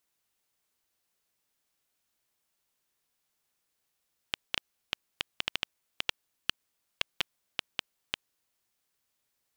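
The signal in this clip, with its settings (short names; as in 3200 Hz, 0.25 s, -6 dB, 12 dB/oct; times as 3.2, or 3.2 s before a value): random clicks 5.1/s -9.5 dBFS 4.09 s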